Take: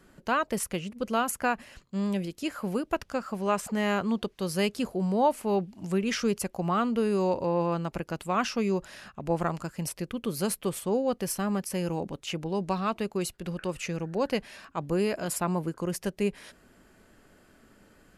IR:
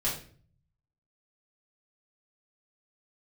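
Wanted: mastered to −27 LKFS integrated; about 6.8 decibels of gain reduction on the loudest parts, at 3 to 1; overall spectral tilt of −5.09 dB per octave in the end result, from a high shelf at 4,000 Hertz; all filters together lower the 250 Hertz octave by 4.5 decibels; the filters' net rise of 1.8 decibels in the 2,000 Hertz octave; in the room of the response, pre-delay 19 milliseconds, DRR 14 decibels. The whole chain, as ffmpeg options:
-filter_complex "[0:a]equalizer=frequency=250:width_type=o:gain=-6.5,equalizer=frequency=2000:width_type=o:gain=4.5,highshelf=frequency=4000:gain=-8,acompressor=threshold=-29dB:ratio=3,asplit=2[link_01][link_02];[1:a]atrim=start_sample=2205,adelay=19[link_03];[link_02][link_03]afir=irnorm=-1:irlink=0,volume=-21dB[link_04];[link_01][link_04]amix=inputs=2:normalize=0,volume=7.5dB"

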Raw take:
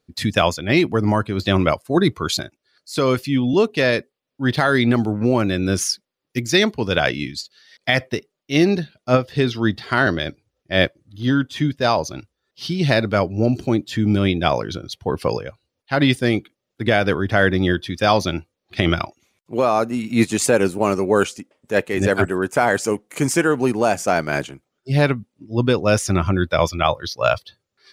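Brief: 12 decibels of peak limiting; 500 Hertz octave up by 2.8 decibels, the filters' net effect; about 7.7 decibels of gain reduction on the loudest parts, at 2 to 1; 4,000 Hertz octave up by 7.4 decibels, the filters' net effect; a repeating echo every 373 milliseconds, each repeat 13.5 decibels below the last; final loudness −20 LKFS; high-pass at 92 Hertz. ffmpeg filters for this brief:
ffmpeg -i in.wav -af "highpass=92,equalizer=frequency=500:width_type=o:gain=3.5,equalizer=frequency=4000:width_type=o:gain=9,acompressor=threshold=-22dB:ratio=2,alimiter=limit=-14dB:level=0:latency=1,aecho=1:1:373|746:0.211|0.0444,volume=6dB" out.wav

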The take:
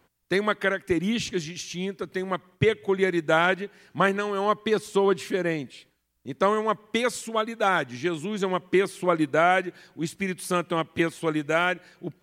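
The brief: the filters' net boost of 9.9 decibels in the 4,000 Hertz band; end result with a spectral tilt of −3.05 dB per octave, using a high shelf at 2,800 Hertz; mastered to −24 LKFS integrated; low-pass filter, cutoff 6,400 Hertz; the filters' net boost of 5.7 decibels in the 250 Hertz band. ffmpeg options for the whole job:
ffmpeg -i in.wav -af "lowpass=6400,equalizer=frequency=250:width_type=o:gain=8.5,highshelf=frequency=2800:gain=8,equalizer=frequency=4000:width_type=o:gain=7,volume=-2.5dB" out.wav

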